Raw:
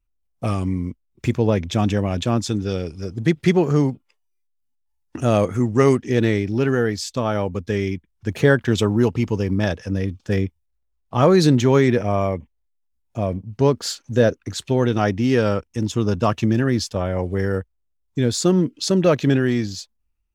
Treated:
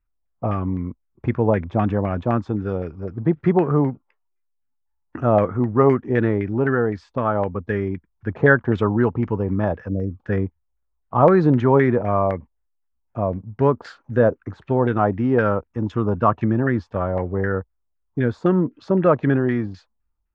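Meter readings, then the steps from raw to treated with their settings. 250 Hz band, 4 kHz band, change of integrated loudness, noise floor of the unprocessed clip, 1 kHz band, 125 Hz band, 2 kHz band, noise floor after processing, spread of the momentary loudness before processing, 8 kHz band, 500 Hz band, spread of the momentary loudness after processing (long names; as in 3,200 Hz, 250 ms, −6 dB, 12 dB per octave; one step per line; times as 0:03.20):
−1.0 dB, below −15 dB, −0.5 dB, −70 dBFS, +3.5 dB, −1.5 dB, +1.5 dB, −72 dBFS, 11 LU, below −30 dB, 0.0 dB, 11 LU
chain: gain on a spectral selection 0:09.89–0:10.11, 670–5,200 Hz −26 dB
auto-filter low-pass saw down 3.9 Hz 800–1,800 Hz
level −1.5 dB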